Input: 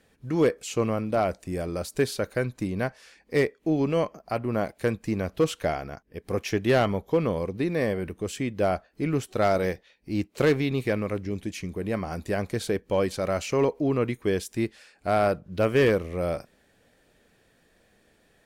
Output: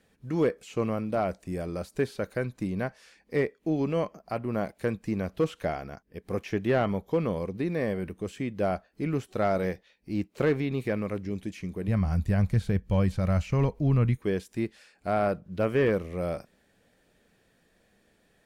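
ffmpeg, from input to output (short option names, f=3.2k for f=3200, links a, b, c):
-filter_complex "[0:a]asplit=3[a][b][c];[a]afade=t=out:st=11.87:d=0.02[d];[b]asubboost=boost=10.5:cutoff=110,afade=t=in:st=11.87:d=0.02,afade=t=out:st=14.16:d=0.02[e];[c]afade=t=in:st=14.16:d=0.02[f];[d][e][f]amix=inputs=3:normalize=0,acrossover=split=2700[g][h];[h]acompressor=threshold=-45dB:ratio=4:attack=1:release=60[i];[g][i]amix=inputs=2:normalize=0,equalizer=f=190:t=o:w=0.41:g=4,volume=-3.5dB"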